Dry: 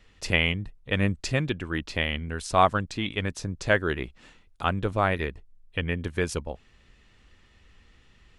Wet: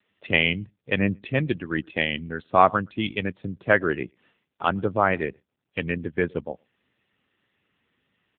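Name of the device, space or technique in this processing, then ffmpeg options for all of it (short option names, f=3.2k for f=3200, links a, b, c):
mobile call with aggressive noise cancelling: -filter_complex "[0:a]asplit=3[a][b][c];[a]afade=t=out:st=1.19:d=0.02[d];[b]bandreject=f=60:t=h:w=6,bandreject=f=120:t=h:w=6,afade=t=in:st=1.19:d=0.02,afade=t=out:st=2.05:d=0.02[e];[c]afade=t=in:st=2.05:d=0.02[f];[d][e][f]amix=inputs=3:normalize=0,highpass=130,asplit=2[g][h];[h]adelay=116.6,volume=-25dB,highshelf=f=4k:g=-2.62[i];[g][i]amix=inputs=2:normalize=0,afftdn=nr=12:nf=-36,volume=4dB" -ar 8000 -c:a libopencore_amrnb -b:a 7950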